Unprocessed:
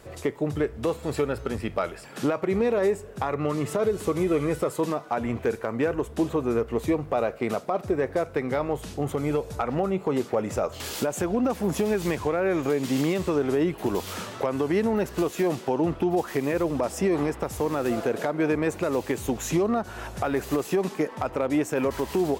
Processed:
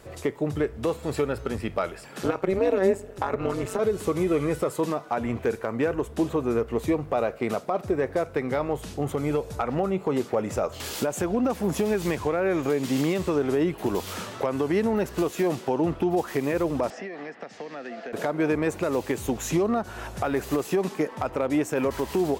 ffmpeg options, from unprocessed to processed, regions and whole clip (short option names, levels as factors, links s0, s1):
-filter_complex "[0:a]asettb=1/sr,asplit=3[s0][s1][s2];[s0]atrim=end=2.214[s3];[s1]atrim=start=2.21:end=3.79,asetpts=PTS-STARTPTS,afade=t=in:d=0.004:c=qsin,afade=t=out:st=1.576:d=0.004:c=qsin,aecho=1:1:2.3:1,atrim=end_sample=69678,tremolo=f=190:d=0.857[s4];[s2]atrim=start=3.786[s5];[s3][s4]acrossfade=d=0.004:c1=hsin:c2=qsin[s6];[s6][s5]acrossfade=d=0.004:c1=qsin:c2=hsin,asettb=1/sr,asplit=3[s7][s8][s9];[s7]atrim=end=16.904[s10];[s8]atrim=start=16.9:end=18.13,asetpts=PTS-STARTPTS,afade=t=in:d=0.004:c=qsin,afade=t=out:st=1.226:d=0.004:c=qsin,highpass=f=210:w=0.5412,highpass=f=210:w=1.3066,equalizer=f=330:t=q:w=4:g=-8,equalizer=f=690:t=q:w=4:g=6,equalizer=f=1000:t=q:w=4:g=-5,equalizer=f=1800:t=q:w=4:g=10,equalizer=f=3600:t=q:w=4:g=-4,lowpass=f=4900:w=0.5412,lowpass=f=4900:w=1.3066,acrossover=split=280|2300[s11][s12][s13];[s11]acompressor=threshold=0.00562:ratio=4[s14];[s12]acompressor=threshold=0.0112:ratio=4[s15];[s13]acompressor=threshold=0.00398:ratio=4[s16];[s14][s15][s16]amix=inputs=3:normalize=0[s17];[s9]atrim=start=18.126[s18];[s10][s17]acrossfade=d=0.004:c1=hsin:c2=qsin[s19];[s19][s18]acrossfade=d=0.004:c1=qsin:c2=hsin"